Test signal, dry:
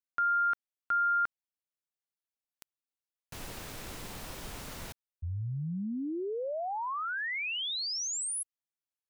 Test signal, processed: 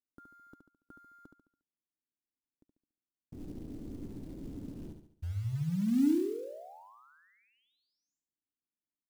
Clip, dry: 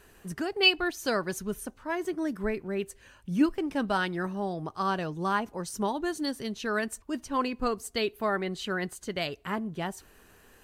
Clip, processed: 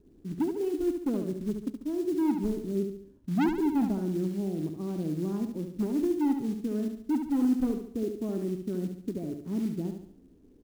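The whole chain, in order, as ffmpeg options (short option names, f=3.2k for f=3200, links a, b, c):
-af "lowpass=f=290:t=q:w=3.6,aresample=16000,asoftclip=type=hard:threshold=-21.5dB,aresample=44100,acrusher=bits=6:mode=log:mix=0:aa=0.000001,aecho=1:1:71|142|213|284|355:0.473|0.208|0.0916|0.0403|0.0177,volume=-2dB"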